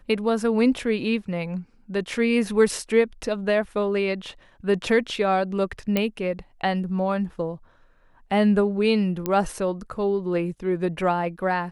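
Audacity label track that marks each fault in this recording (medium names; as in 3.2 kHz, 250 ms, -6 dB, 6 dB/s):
5.970000	5.970000	pop -9 dBFS
9.260000	9.260000	pop -12 dBFS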